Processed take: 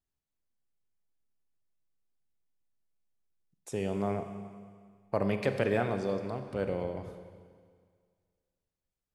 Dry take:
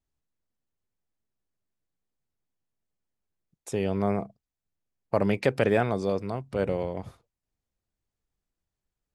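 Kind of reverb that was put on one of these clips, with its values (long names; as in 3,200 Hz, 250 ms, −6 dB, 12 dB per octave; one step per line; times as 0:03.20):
four-comb reverb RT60 1.9 s, combs from 30 ms, DRR 7.5 dB
level −5.5 dB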